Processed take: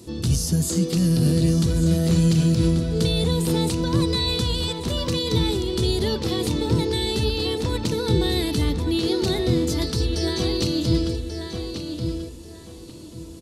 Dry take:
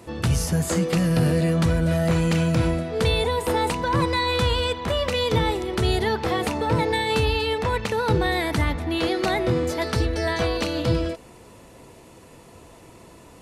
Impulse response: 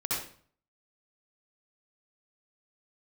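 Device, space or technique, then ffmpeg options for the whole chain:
over-bright horn tweeter: -filter_complex "[0:a]highshelf=frequency=3000:width_type=q:width=1.5:gain=11,alimiter=limit=-10dB:level=0:latency=1:release=101,lowshelf=frequency=470:width_type=q:width=1.5:gain=8.5,asplit=2[link_01][link_02];[link_02]adelay=1137,lowpass=frequency=4200:poles=1,volume=-6dB,asplit=2[link_03][link_04];[link_04]adelay=1137,lowpass=frequency=4200:poles=1,volume=0.26,asplit=2[link_05][link_06];[link_06]adelay=1137,lowpass=frequency=4200:poles=1,volume=0.26[link_07];[link_01][link_03][link_05][link_07]amix=inputs=4:normalize=0,volume=-7dB"

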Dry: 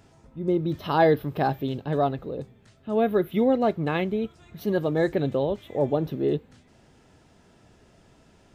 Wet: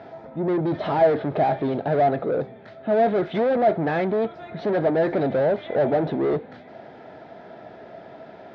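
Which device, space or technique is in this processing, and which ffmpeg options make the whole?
overdrive pedal into a guitar cabinet: -filter_complex "[0:a]asettb=1/sr,asplit=3[link_01][link_02][link_03];[link_01]atrim=end=2.924[link_04];[link_02]atrim=start=2.92:end=3.49,asetpts=PTS-STARTPTS,afade=type=in:duration=0.004:curve=qsin,afade=type=out:start_time=0.566:duration=0.004:curve=qsin,equalizer=frequency=11000:width_type=o:width=2.8:gain=11[link_05];[link_03]atrim=start=3.486[link_06];[link_04][link_05]acrossfade=duration=0.004:curve1=hsin:curve2=qsin[link_07];[link_07][link_06]acrossfade=duration=0.004:curve1=qsin:curve2=hsin,asplit=2[link_08][link_09];[link_09]highpass=frequency=720:poles=1,volume=33dB,asoftclip=type=tanh:threshold=-8.5dB[link_10];[link_08][link_10]amix=inputs=2:normalize=0,lowpass=frequency=1300:poles=1,volume=-6dB,highpass=91,equalizer=frequency=660:width_type=q:width=4:gain=9,equalizer=frequency=1100:width_type=q:width=4:gain=-7,equalizer=frequency=2800:width_type=q:width=4:gain=-10,lowpass=frequency=3900:width=0.5412,lowpass=frequency=3900:width=1.3066,volume=-6.5dB"

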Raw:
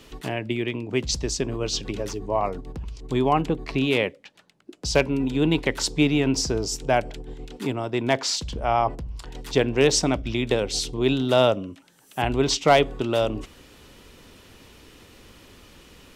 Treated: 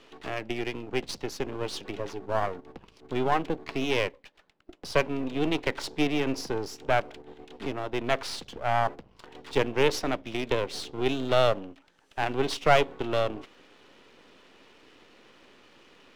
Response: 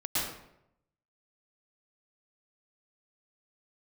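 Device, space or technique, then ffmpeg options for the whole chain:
crystal radio: -af "highpass=280,lowpass=3500,aeval=exprs='if(lt(val(0),0),0.251*val(0),val(0))':channel_layout=same"

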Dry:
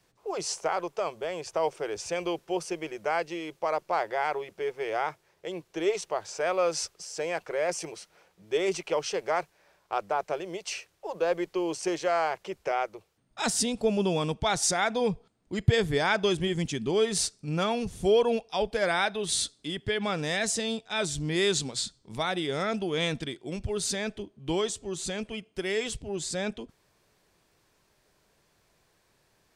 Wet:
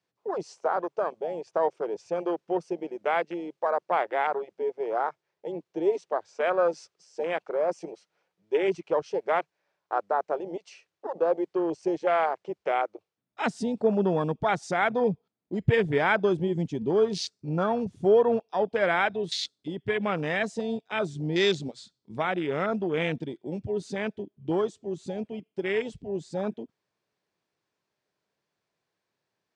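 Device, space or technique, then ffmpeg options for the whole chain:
over-cleaned archive recording: -af "highpass=130,lowpass=6000,afwtdn=0.0224,volume=2.5dB"

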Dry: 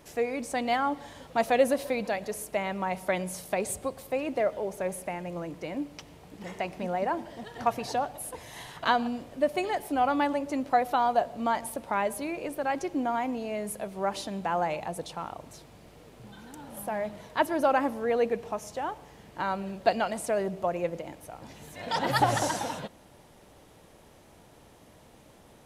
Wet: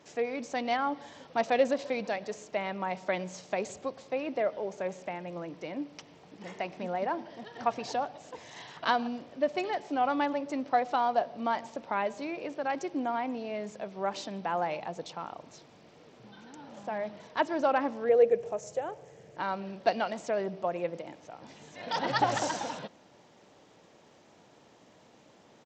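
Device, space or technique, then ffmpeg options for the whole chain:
Bluetooth headset: -filter_complex "[0:a]asettb=1/sr,asplit=3[link_01][link_02][link_03];[link_01]atrim=end=18.094[link_04];[link_02]atrim=start=18.09:end=19.38,asetpts=PTS-STARTPTS,afade=type=in:duration=0.004:curve=qsin,afade=type=out:start_time=1.286:duration=0.004:curve=qsin,equalizer=frequency=125:width_type=o:width=1:gain=9,equalizer=frequency=250:width_type=o:width=1:gain=-10,equalizer=frequency=500:width_type=o:width=1:gain=11,equalizer=frequency=1000:width_type=o:width=1:gain=-9,equalizer=frequency=4000:width_type=o:width=1:gain=-10,equalizer=frequency=8000:width_type=o:width=1:gain=7[link_05];[link_03]atrim=start=19.376[link_06];[link_04][link_05]acrossfade=duration=0.004:curve1=hsin:curve2=qsin[link_07];[link_07][link_06]acrossfade=duration=0.004:curve1=qsin:curve2=hsin,highpass=160,aresample=16000,aresample=44100,volume=-2.5dB" -ar 32000 -c:a sbc -b:a 64k

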